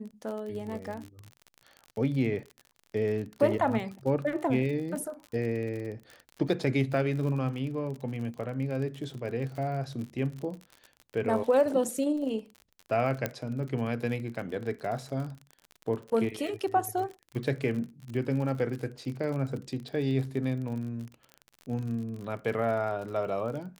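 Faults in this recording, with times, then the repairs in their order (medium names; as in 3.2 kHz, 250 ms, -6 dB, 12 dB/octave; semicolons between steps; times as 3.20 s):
crackle 46 per s -36 dBFS
13.26 s: pop -14 dBFS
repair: de-click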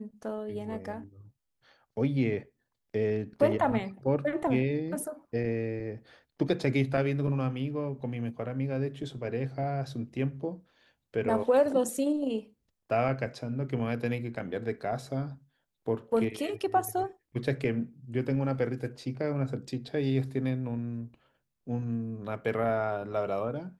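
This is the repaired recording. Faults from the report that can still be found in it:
nothing left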